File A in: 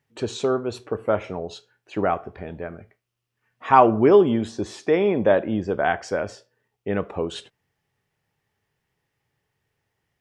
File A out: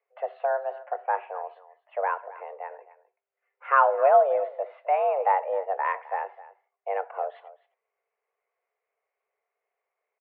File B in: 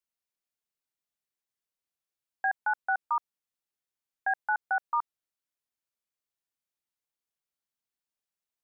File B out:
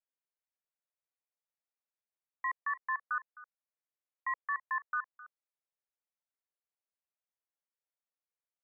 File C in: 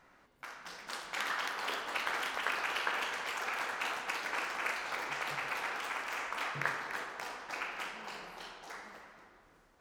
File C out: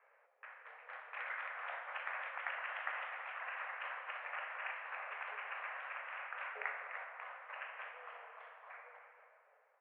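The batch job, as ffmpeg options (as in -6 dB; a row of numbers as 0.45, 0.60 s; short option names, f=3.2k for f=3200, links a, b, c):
-filter_complex "[0:a]aemphasis=mode=reproduction:type=bsi,asplit=2[a][b];[b]aecho=0:1:260:0.126[c];[a][c]amix=inputs=2:normalize=0,highpass=f=210:t=q:w=0.5412,highpass=f=210:t=q:w=1.307,lowpass=f=2.3k:t=q:w=0.5176,lowpass=f=2.3k:t=q:w=0.7071,lowpass=f=2.3k:t=q:w=1.932,afreqshift=280,volume=-6dB"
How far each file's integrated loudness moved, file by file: -4.0, -5.5, -7.5 LU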